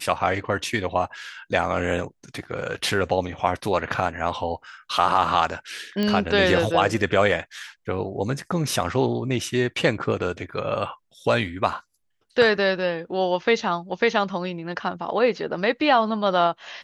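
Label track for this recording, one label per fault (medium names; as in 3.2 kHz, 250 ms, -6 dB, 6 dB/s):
6.030000	6.030000	pop -13 dBFS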